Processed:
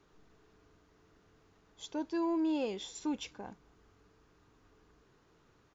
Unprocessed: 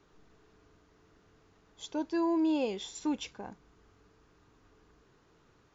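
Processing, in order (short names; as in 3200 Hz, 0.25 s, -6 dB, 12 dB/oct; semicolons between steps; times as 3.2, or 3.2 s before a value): in parallel at -7.5 dB: soft clip -31.5 dBFS, distortion -12 dB; on the sum: speakerphone echo 0.26 s, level -30 dB; gain -5 dB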